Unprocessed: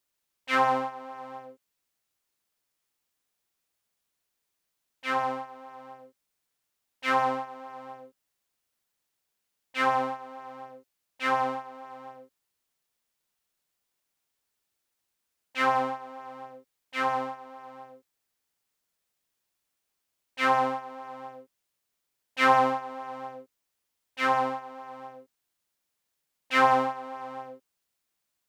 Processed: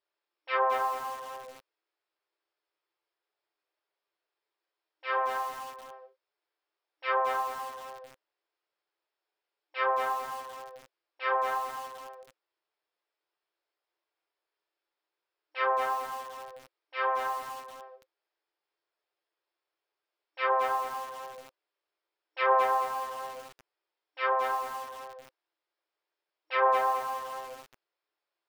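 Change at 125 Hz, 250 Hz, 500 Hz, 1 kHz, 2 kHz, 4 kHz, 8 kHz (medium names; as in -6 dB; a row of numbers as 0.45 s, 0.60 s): under -15 dB, under -15 dB, -0.5 dB, -2.0 dB, -4.0 dB, -5.5 dB, no reading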